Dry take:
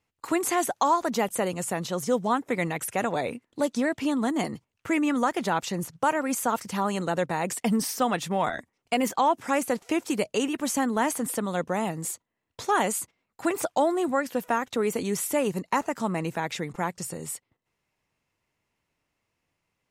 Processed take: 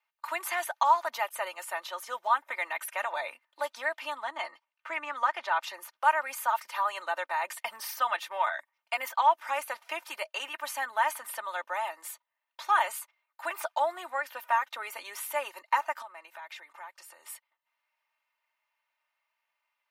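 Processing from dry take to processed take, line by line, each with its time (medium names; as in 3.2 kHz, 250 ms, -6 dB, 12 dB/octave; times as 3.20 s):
4.22–5.63 s: distance through air 67 m
16.02–17.26 s: compression 4:1, threshold -38 dBFS
whole clip: high-pass 810 Hz 24 dB/octave; peaking EQ 7.5 kHz -15 dB 1.2 oct; comb 3.3 ms, depth 69%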